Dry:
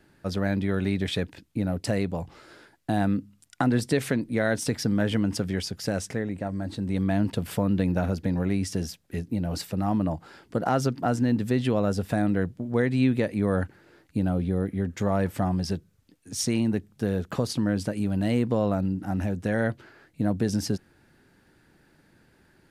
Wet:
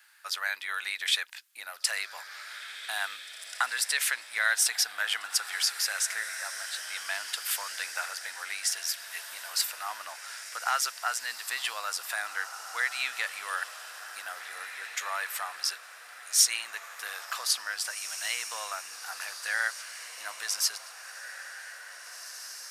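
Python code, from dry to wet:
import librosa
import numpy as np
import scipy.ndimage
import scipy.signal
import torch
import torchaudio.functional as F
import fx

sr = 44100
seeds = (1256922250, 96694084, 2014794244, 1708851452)

y = scipy.signal.sosfilt(scipy.signal.butter(4, 1200.0, 'highpass', fs=sr, output='sos'), x)
y = fx.high_shelf(y, sr, hz=7800.0, db=8.5)
y = fx.echo_diffused(y, sr, ms=1936, feedback_pct=46, wet_db=-10.0)
y = F.gain(torch.from_numpy(y), 5.5).numpy()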